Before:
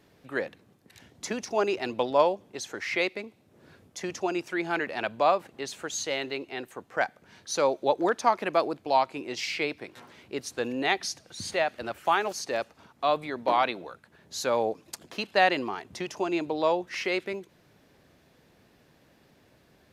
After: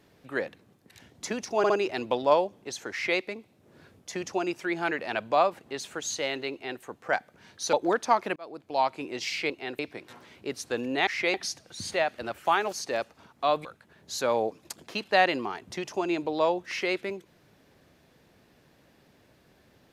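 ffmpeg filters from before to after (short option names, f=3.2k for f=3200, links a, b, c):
-filter_complex "[0:a]asplit=10[a][b][c][d][e][f][g][h][i][j];[a]atrim=end=1.642[k];[b]atrim=start=1.578:end=1.642[l];[c]atrim=start=1.578:end=7.612[m];[d]atrim=start=7.888:end=8.52,asetpts=PTS-STARTPTS,afade=t=out:st=0.628:d=0.004:c=hsin[n];[e]atrim=start=8.52:end=9.662,asetpts=PTS-STARTPTS,afade=t=in:d=0.58[o];[f]atrim=start=6.398:end=6.692[p];[g]atrim=start=9.658:end=10.942[q];[h]atrim=start=2.798:end=3.072[r];[i]atrim=start=10.938:end=13.252[s];[j]atrim=start=13.878[t];[k][l]acrossfade=d=0.004:c1=hsin:c2=hsin[u];[u][m]acrossfade=d=0.004:c1=hsin:c2=hsin[v];[n][o]concat=n=2:v=0:a=1[w];[v][w]acrossfade=d=0.004:c1=hsin:c2=hsin[x];[x][p]acrossfade=d=0.004:c1=hsin:c2=hsin[y];[y][q]acrossfade=d=0.004:c1=hsin:c2=hsin[z];[z][r]acrossfade=d=0.004:c1=hsin:c2=hsin[aa];[aa][s]acrossfade=d=0.004:c1=hsin:c2=hsin[ab];[ab][t]acrossfade=d=0.004:c1=hsin:c2=hsin"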